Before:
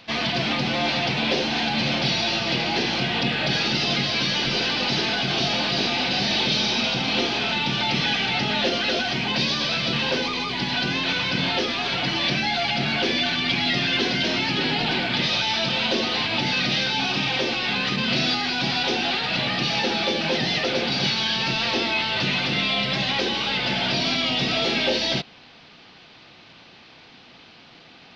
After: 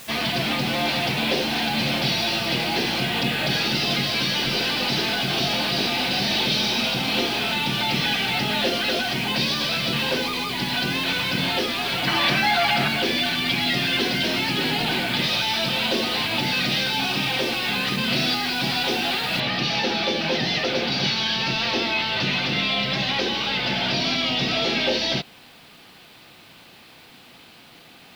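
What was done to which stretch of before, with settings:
12.07–12.88 s: peaking EQ 1.2 kHz +9 dB 1.6 oct
19.40 s: noise floor step -42 dB -59 dB

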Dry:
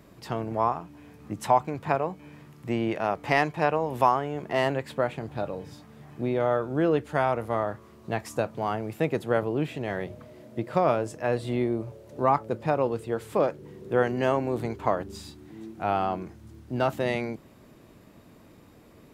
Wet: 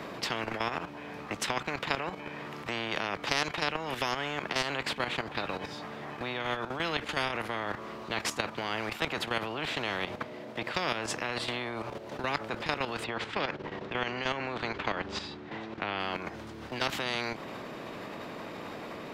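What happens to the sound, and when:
13.04–16.00 s: distance through air 120 m
whole clip: three-band isolator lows -20 dB, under 200 Hz, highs -17 dB, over 4.9 kHz; level held to a coarse grid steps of 12 dB; spectrum-flattening compressor 4:1

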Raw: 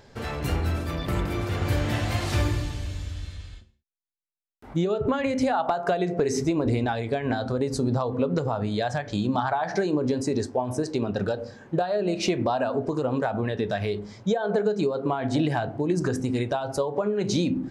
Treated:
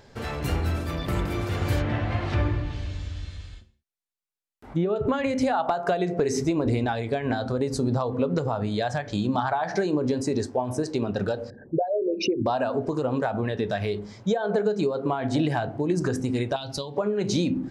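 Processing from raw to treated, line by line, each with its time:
1.79–4.96 s: low-pass that closes with the level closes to 2.2 kHz, closed at -22.5 dBFS
11.50–12.46 s: resonances exaggerated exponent 3
16.56–16.97 s: FFT filter 230 Hz 0 dB, 450 Hz -10 dB, 1.4 kHz -8 dB, 4.1 kHz +12 dB, 7.5 kHz -2 dB

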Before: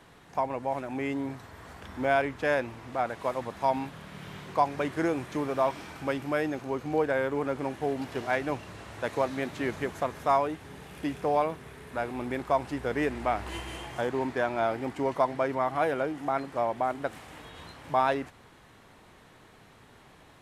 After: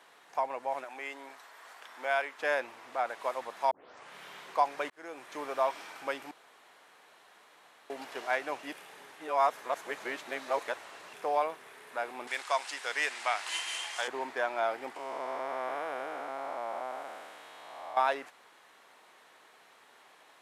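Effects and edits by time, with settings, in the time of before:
0.84–2.39 s: high-pass 680 Hz 6 dB/octave
3.71 s: tape start 0.44 s
4.90–5.45 s: fade in
6.31–7.90 s: room tone
8.63–11.13 s: reverse
12.27–14.08 s: frequency weighting ITU-R 468
14.96–17.97 s: spectral blur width 462 ms
whole clip: high-pass 590 Hz 12 dB/octave; trim -1 dB

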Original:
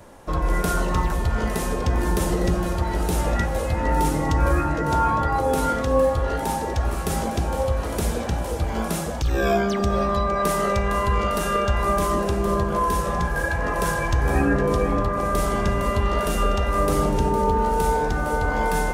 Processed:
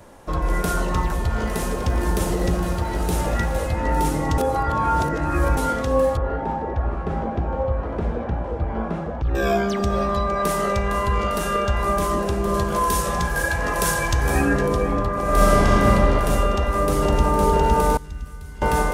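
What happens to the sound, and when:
1.20–3.67 s: bit-crushed delay 114 ms, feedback 80%, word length 8-bit, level -14 dB
4.38–5.57 s: reverse
6.17–9.35 s: low-pass 1.5 kHz
12.54–14.68 s: treble shelf 2.8 kHz +9.5 dB
15.23–15.90 s: reverb throw, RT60 2.9 s, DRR -7 dB
16.51–17.29 s: echo throw 510 ms, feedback 85%, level -2.5 dB
17.97–18.62 s: amplifier tone stack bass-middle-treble 6-0-2

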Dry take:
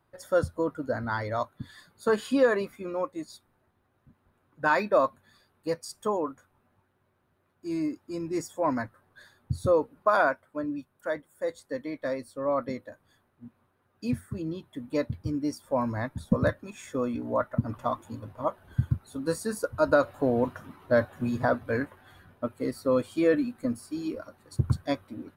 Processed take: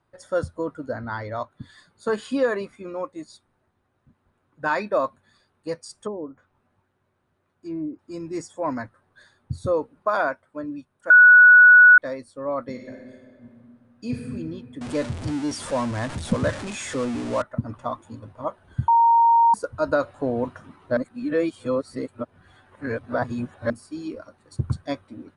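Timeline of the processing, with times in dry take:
0.93–1.51 s: distance through air 83 m
5.95–7.99 s: low-pass that closes with the level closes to 430 Hz, closed at -25 dBFS
11.10–11.98 s: bleep 1.47 kHz -7 dBFS
12.70–14.27 s: reverb throw, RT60 2 s, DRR 0.5 dB
14.81–17.42 s: jump at every zero crossing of -28.5 dBFS
18.88–19.54 s: bleep 928 Hz -12.5 dBFS
20.97–23.70 s: reverse
whole clip: steep low-pass 10 kHz 72 dB/octave

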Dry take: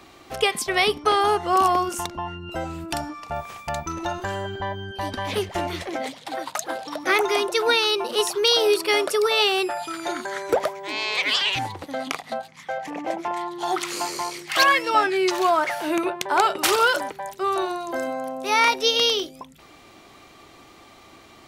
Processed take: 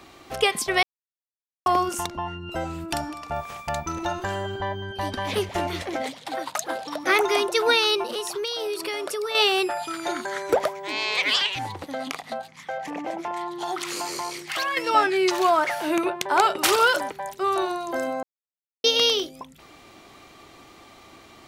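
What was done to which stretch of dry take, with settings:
0.83–1.66 s: mute
2.86–6.03 s: delay 202 ms -17 dB
8.03–9.35 s: compression, threshold -26 dBFS
11.46–14.77 s: compression 3:1, threshold -26 dBFS
18.23–18.84 s: mute

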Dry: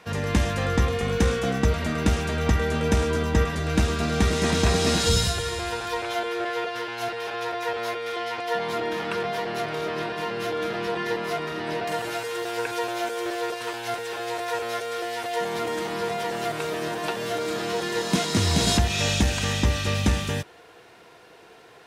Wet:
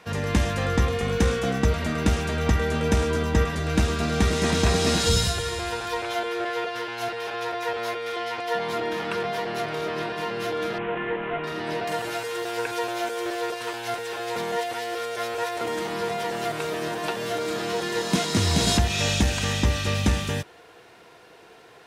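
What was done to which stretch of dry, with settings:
10.78–11.44 s: CVSD coder 16 kbps
14.36–15.61 s: reverse

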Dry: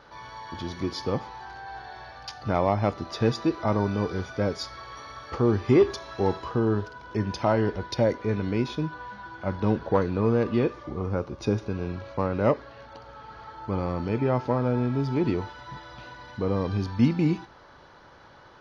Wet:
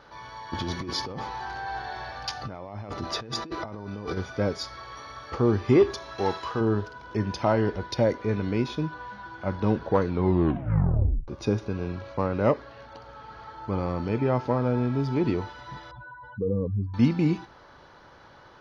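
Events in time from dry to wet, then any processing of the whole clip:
0.53–4.17 s: compressor with a negative ratio -34 dBFS
6.18–6.61 s: tilt shelf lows -6 dB, about 670 Hz
10.08 s: tape stop 1.20 s
15.91–16.94 s: spectral contrast enhancement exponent 2.6

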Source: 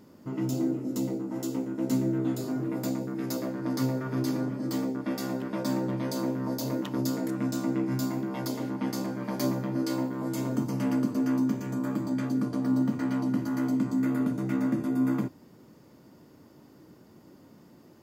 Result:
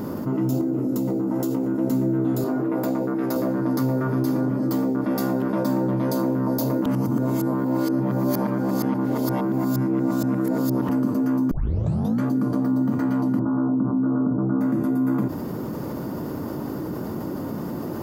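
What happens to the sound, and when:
0.61–1.67 s: compression, threshold -30 dBFS
2.44–3.36 s: tone controls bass -10 dB, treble -7 dB
6.86–10.89 s: reverse
11.51 s: tape start 0.71 s
13.39–14.61 s: steep low-pass 1.4 kHz 48 dB/octave
whole clip: high-order bell 4.1 kHz -9 dB 2.6 oct; level flattener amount 70%; trim +2.5 dB

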